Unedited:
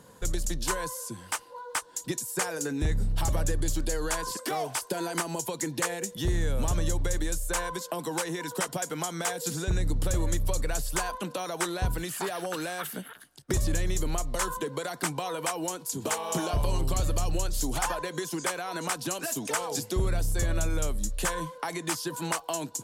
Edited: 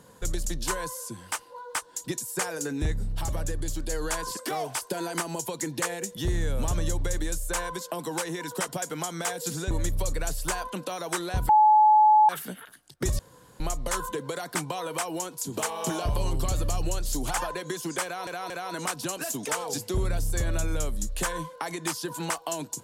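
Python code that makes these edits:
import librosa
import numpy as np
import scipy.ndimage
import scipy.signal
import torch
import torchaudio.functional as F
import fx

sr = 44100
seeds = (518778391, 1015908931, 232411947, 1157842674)

y = fx.edit(x, sr, fx.clip_gain(start_s=2.92, length_s=0.98, db=-3.0),
    fx.cut(start_s=9.71, length_s=0.48),
    fx.bleep(start_s=11.97, length_s=0.8, hz=855.0, db=-14.0),
    fx.room_tone_fill(start_s=13.67, length_s=0.41),
    fx.stutter(start_s=18.52, slice_s=0.23, count=3), tone=tone)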